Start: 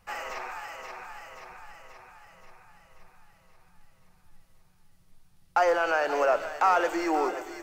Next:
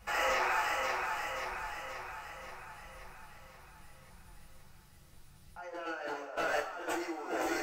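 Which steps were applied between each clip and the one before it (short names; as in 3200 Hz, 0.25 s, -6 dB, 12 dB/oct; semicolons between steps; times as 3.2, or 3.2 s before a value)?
negative-ratio compressor -37 dBFS, ratio -1; two-slope reverb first 0.3 s, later 1.6 s, from -17 dB, DRR -3 dB; gain -4 dB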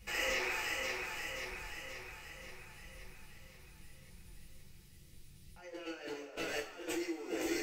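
band shelf 970 Hz -13.5 dB; gain +1 dB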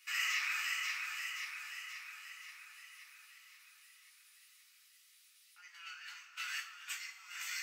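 elliptic high-pass 1200 Hz, stop band 60 dB; gain +1.5 dB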